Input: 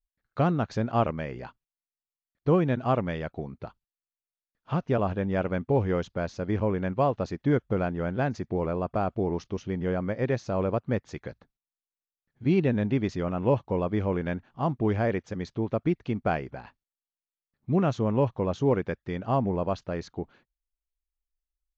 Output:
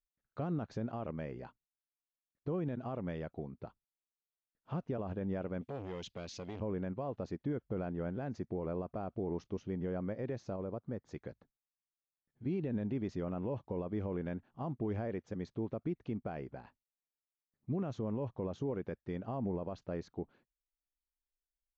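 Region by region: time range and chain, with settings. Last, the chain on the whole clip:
0:05.61–0:06.60: high shelf with overshoot 1,800 Hz +13 dB, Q 1.5 + downward compressor 4 to 1, threshold −27 dBFS + saturating transformer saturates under 770 Hz
0:10.56–0:11.11: parametric band 2,700 Hz −7 dB 0.71 octaves + downward compressor 2 to 1, threshold −32 dBFS
whole clip: low-shelf EQ 170 Hz −9 dB; brickwall limiter −23.5 dBFS; tilt shelving filter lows +6 dB, about 670 Hz; level −7.5 dB

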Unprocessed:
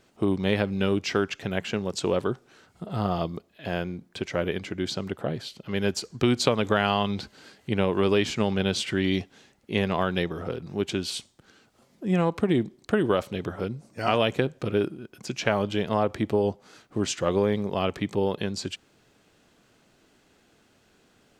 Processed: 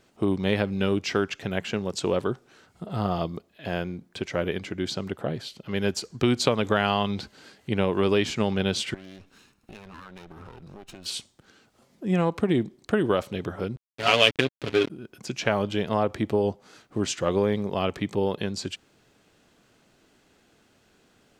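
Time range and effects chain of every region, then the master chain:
0:08.94–0:11.06: lower of the sound and its delayed copy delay 0.75 ms + downward compressor 10 to 1, threshold −40 dBFS
0:13.76–0:14.90: comb filter 7.1 ms + slack as between gear wheels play −23.5 dBFS + meter weighting curve D
whole clip: no processing

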